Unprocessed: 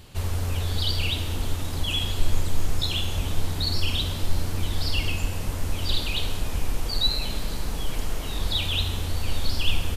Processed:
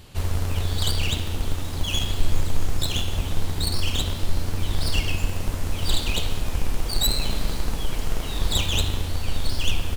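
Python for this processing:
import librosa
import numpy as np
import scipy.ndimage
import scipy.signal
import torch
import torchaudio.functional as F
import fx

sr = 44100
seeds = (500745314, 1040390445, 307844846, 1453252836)

p1 = fx.tracing_dist(x, sr, depth_ms=0.097)
p2 = fx.schmitt(p1, sr, flips_db=-19.0)
p3 = p1 + F.gain(torch.from_numpy(p2), -6.5).numpy()
y = fx.rider(p3, sr, range_db=10, speed_s=2.0)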